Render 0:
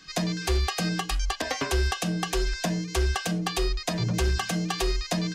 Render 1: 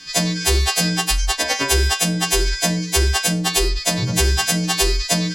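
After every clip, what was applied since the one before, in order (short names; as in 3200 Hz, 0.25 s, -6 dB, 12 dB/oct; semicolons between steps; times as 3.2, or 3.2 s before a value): frequency quantiser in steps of 2 st; notch 1300 Hz, Q 5.5; gain +7 dB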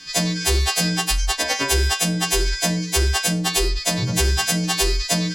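soft clip -7.5 dBFS, distortion -23 dB; gain -1 dB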